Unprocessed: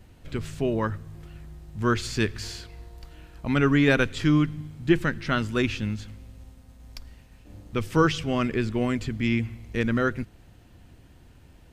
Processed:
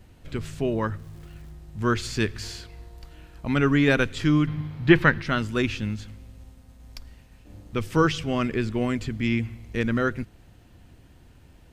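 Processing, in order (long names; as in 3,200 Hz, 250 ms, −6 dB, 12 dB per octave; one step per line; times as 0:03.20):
0:00.98–0:01.51: surface crackle 550 per second −49 dBFS
0:04.47–0:05.22: graphic EQ with 10 bands 125 Hz +7 dB, 500 Hz +5 dB, 1,000 Hz +9 dB, 2,000 Hz +7 dB, 4,000 Hz +6 dB, 8,000 Hz −9 dB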